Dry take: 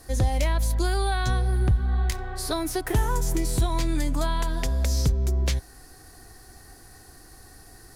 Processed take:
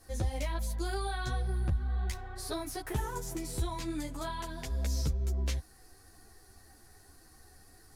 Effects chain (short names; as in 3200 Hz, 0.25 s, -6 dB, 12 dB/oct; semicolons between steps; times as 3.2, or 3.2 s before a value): ensemble effect; gain -6 dB